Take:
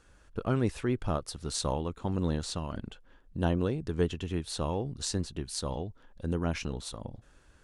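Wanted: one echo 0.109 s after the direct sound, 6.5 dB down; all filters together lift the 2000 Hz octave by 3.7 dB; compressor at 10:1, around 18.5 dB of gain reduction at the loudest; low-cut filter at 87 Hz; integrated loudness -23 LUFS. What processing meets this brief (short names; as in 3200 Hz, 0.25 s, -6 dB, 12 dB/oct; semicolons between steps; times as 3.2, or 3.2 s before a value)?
HPF 87 Hz; bell 2000 Hz +5 dB; compressor 10:1, threshold -42 dBFS; echo 0.109 s -6.5 dB; gain +23.5 dB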